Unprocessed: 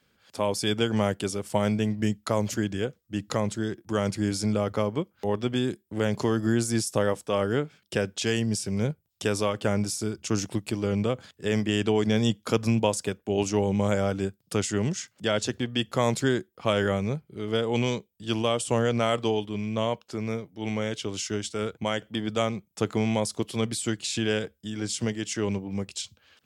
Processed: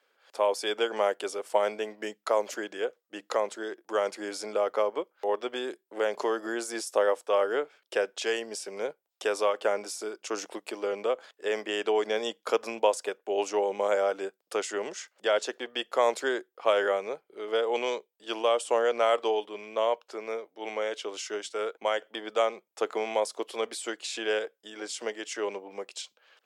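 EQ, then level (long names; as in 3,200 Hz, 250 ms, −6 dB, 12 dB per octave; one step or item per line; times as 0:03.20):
high-pass filter 450 Hz 24 dB per octave
high-shelf EQ 2,400 Hz −10.5 dB
+3.5 dB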